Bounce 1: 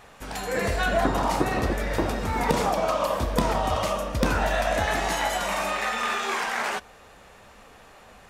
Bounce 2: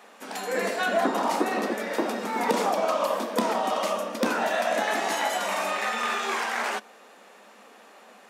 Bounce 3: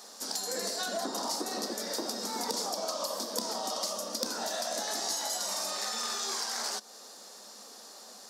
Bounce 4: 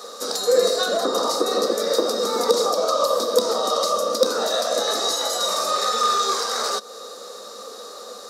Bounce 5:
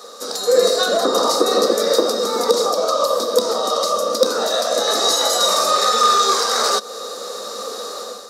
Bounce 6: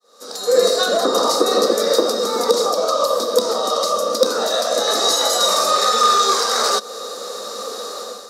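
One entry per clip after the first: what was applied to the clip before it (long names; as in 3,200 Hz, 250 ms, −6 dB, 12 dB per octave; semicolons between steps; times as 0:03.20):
elliptic high-pass filter 210 Hz, stop band 50 dB
high shelf with overshoot 3,500 Hz +12 dB, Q 3; downward compressor 3 to 1, threshold −31 dBFS, peak gain reduction 12.5 dB; level −2.5 dB
hollow resonant body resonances 490/1,200/3,800 Hz, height 18 dB, ringing for 30 ms; level +5.5 dB
automatic gain control gain up to 10 dB; level −1 dB
fade in at the beginning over 0.57 s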